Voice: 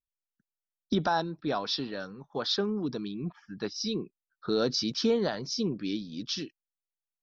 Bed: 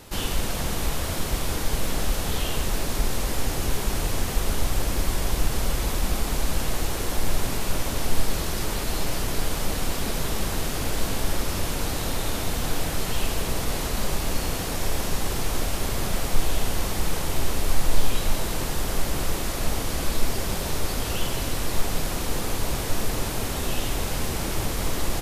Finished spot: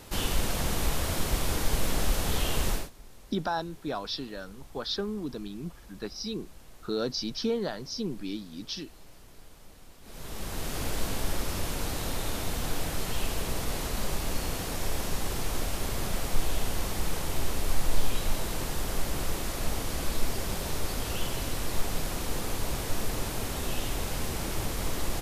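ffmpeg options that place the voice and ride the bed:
-filter_complex "[0:a]adelay=2400,volume=-3dB[a];[1:a]volume=19dB,afade=t=out:st=2.7:d=0.2:silence=0.0630957,afade=t=in:st=10.02:d=0.78:silence=0.0891251[b];[a][b]amix=inputs=2:normalize=0"

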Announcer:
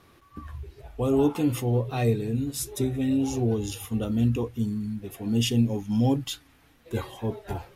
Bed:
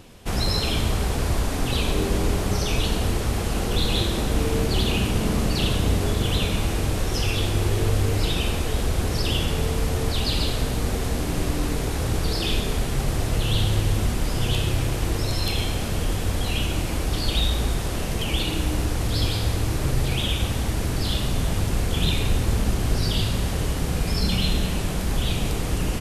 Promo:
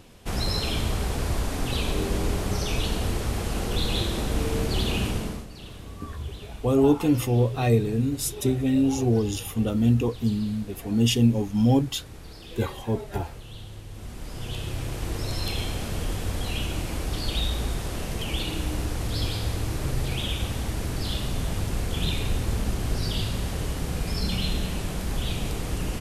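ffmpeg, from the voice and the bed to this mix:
-filter_complex "[0:a]adelay=5650,volume=3dB[a];[1:a]volume=11.5dB,afade=t=out:st=5.07:d=0.39:silence=0.158489,afade=t=in:st=13.89:d=1.49:silence=0.177828[b];[a][b]amix=inputs=2:normalize=0"

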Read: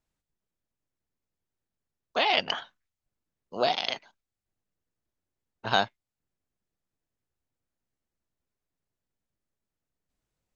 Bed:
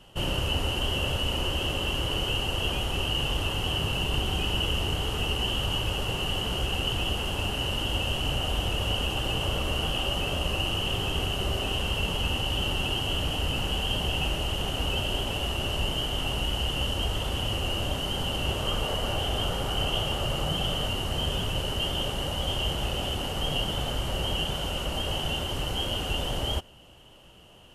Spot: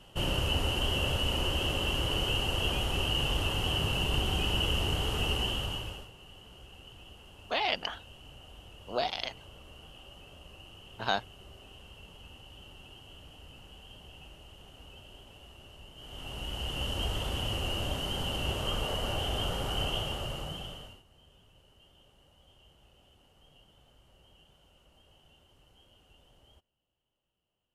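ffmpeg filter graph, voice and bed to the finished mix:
-filter_complex "[0:a]adelay=5350,volume=-5.5dB[a];[1:a]volume=17dB,afade=t=out:st=5.34:d=0.76:silence=0.0891251,afade=t=in:st=15.95:d=1.09:silence=0.112202,afade=t=out:st=19.81:d=1.22:silence=0.0375837[b];[a][b]amix=inputs=2:normalize=0"

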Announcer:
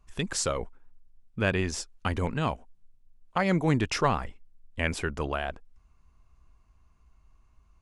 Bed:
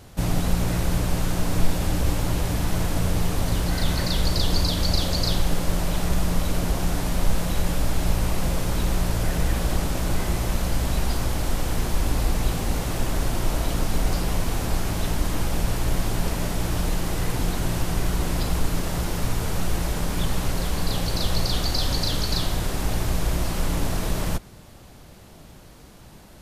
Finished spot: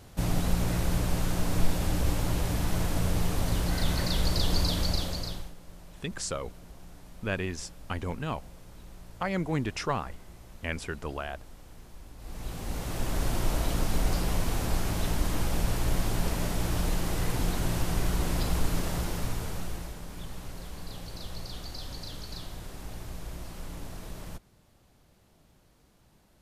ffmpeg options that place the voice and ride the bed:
-filter_complex "[0:a]adelay=5850,volume=-5dB[a];[1:a]volume=16.5dB,afade=t=out:st=4.75:d=0.78:silence=0.0944061,afade=t=in:st=12.18:d=1.13:silence=0.0891251,afade=t=out:st=18.83:d=1.15:silence=0.251189[b];[a][b]amix=inputs=2:normalize=0"

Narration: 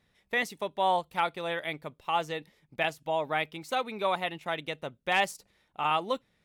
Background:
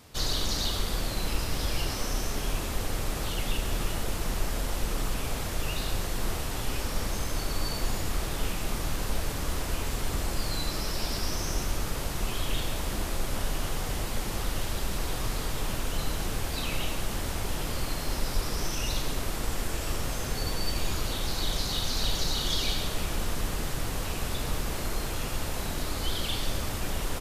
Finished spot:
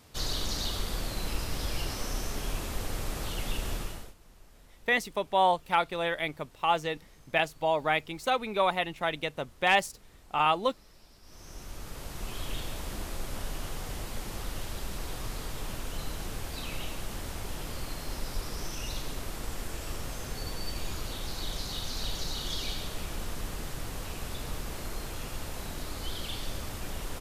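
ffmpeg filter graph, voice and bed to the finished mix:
-filter_complex "[0:a]adelay=4550,volume=2.5dB[a];[1:a]volume=17dB,afade=t=out:st=3.7:d=0.44:silence=0.0707946,afade=t=in:st=11.22:d=1.21:silence=0.0944061[b];[a][b]amix=inputs=2:normalize=0"

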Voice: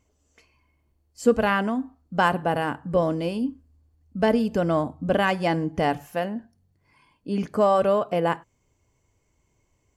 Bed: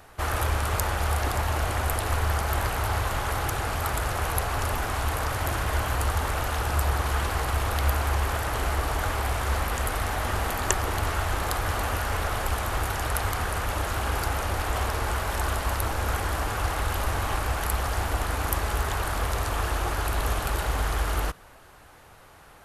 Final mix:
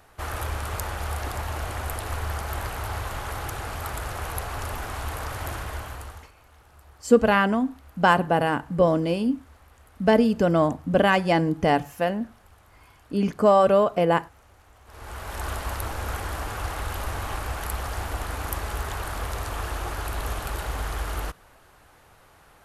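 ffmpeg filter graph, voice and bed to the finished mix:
-filter_complex "[0:a]adelay=5850,volume=2.5dB[a];[1:a]volume=19.5dB,afade=t=out:st=5.5:d=0.81:silence=0.0707946,afade=t=in:st=14.85:d=0.65:silence=0.0630957[b];[a][b]amix=inputs=2:normalize=0"

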